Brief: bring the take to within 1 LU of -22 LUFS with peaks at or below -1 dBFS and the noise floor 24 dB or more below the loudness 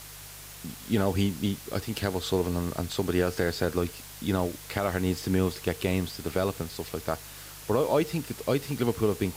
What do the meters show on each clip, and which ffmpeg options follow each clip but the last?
hum 50 Hz; highest harmonic 150 Hz; hum level -47 dBFS; noise floor -45 dBFS; noise floor target -53 dBFS; loudness -29.0 LUFS; peak level -12.0 dBFS; loudness target -22.0 LUFS
-> -af "bandreject=f=50:t=h:w=4,bandreject=f=100:t=h:w=4,bandreject=f=150:t=h:w=4"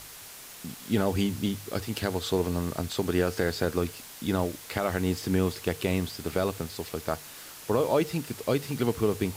hum not found; noise floor -46 dBFS; noise floor target -53 dBFS
-> -af "afftdn=nr=7:nf=-46"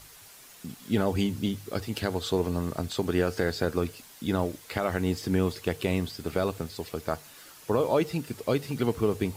noise floor -51 dBFS; noise floor target -54 dBFS
-> -af "afftdn=nr=6:nf=-51"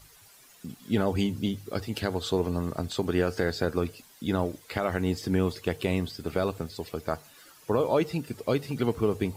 noise floor -55 dBFS; loudness -29.5 LUFS; peak level -12.0 dBFS; loudness target -22.0 LUFS
-> -af "volume=2.37"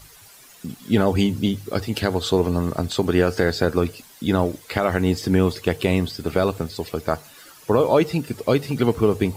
loudness -22.0 LUFS; peak level -4.5 dBFS; noise floor -48 dBFS

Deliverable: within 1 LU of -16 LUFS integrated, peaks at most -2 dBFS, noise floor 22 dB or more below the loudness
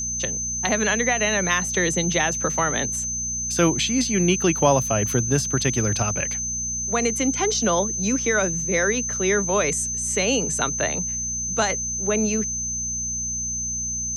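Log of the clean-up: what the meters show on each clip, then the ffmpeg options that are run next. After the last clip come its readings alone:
hum 60 Hz; highest harmonic 240 Hz; hum level -34 dBFS; steady tone 6.2 kHz; tone level -25 dBFS; loudness -21.5 LUFS; peak level -4.5 dBFS; loudness target -16.0 LUFS
-> -af "bandreject=f=60:t=h:w=4,bandreject=f=120:t=h:w=4,bandreject=f=180:t=h:w=4,bandreject=f=240:t=h:w=4"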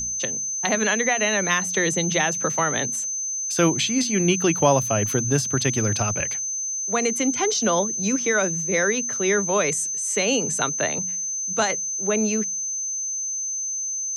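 hum not found; steady tone 6.2 kHz; tone level -25 dBFS
-> -af "bandreject=f=6200:w=30"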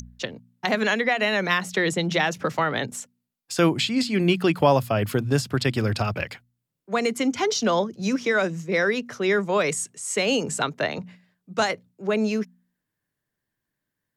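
steady tone not found; loudness -24.0 LUFS; peak level -5.5 dBFS; loudness target -16.0 LUFS
-> -af "volume=2.51,alimiter=limit=0.794:level=0:latency=1"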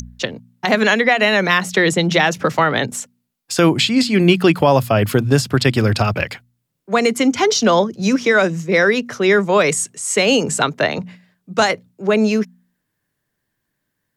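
loudness -16.0 LUFS; peak level -2.0 dBFS; noise floor -75 dBFS

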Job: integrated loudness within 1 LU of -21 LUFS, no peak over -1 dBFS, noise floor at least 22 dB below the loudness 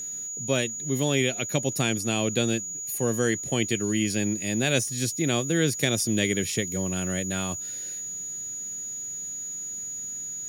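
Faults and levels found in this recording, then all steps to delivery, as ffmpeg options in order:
steady tone 6.8 kHz; tone level -32 dBFS; loudness -26.5 LUFS; peak level -9.0 dBFS; loudness target -21.0 LUFS
-> -af "bandreject=f=6800:w=30"
-af "volume=1.88"

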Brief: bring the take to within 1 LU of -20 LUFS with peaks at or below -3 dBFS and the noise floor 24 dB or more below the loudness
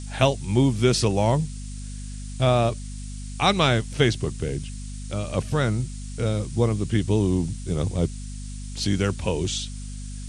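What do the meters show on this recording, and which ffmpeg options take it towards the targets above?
hum 50 Hz; highest harmonic 250 Hz; hum level -32 dBFS; noise floor -34 dBFS; noise floor target -48 dBFS; loudness -24.0 LUFS; peak level -3.5 dBFS; loudness target -20.0 LUFS
-> -af "bandreject=f=50:t=h:w=4,bandreject=f=100:t=h:w=4,bandreject=f=150:t=h:w=4,bandreject=f=200:t=h:w=4,bandreject=f=250:t=h:w=4"
-af "afftdn=nr=14:nf=-34"
-af "volume=1.58,alimiter=limit=0.708:level=0:latency=1"

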